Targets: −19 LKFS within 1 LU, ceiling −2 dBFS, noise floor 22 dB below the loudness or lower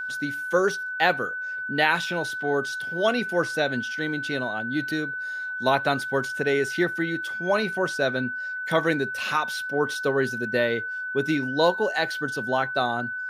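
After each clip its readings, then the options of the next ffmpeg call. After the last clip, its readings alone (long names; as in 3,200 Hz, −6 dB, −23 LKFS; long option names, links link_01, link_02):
interfering tone 1,500 Hz; level of the tone −29 dBFS; integrated loudness −25.5 LKFS; sample peak −5.5 dBFS; target loudness −19.0 LKFS
→ -af "bandreject=frequency=1500:width=30"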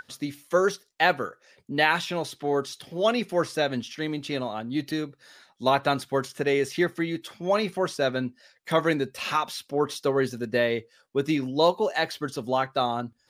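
interfering tone none found; integrated loudness −26.5 LKFS; sample peak −6.5 dBFS; target loudness −19.0 LKFS
→ -af "volume=7.5dB,alimiter=limit=-2dB:level=0:latency=1"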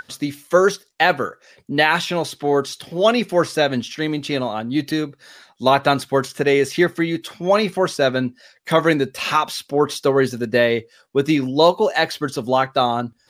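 integrated loudness −19.5 LKFS; sample peak −2.0 dBFS; background noise floor −59 dBFS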